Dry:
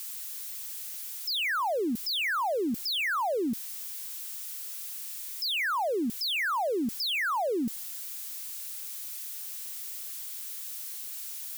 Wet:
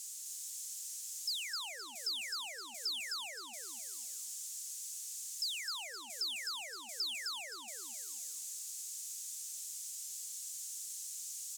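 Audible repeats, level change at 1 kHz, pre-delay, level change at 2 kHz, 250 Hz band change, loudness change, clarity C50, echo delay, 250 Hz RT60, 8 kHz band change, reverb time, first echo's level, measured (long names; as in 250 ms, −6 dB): 4, −20.5 dB, no reverb audible, −14.5 dB, −32.0 dB, −9.0 dB, no reverb audible, 259 ms, no reverb audible, +1.5 dB, no reverb audible, −3.5 dB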